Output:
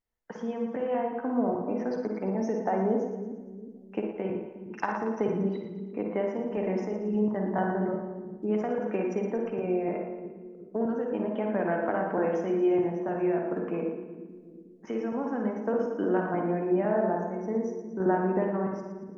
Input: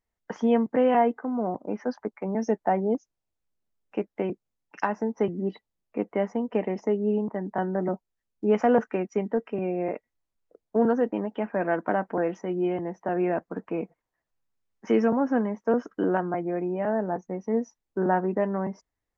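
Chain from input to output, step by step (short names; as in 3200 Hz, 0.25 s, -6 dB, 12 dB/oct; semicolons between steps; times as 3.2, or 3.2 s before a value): compressor 4:1, threshold -24 dBFS, peak gain reduction 8 dB; random-step tremolo; split-band echo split 370 Hz, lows 0.362 s, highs 0.115 s, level -9 dB; on a send at -2 dB: reverb RT60 0.55 s, pre-delay 42 ms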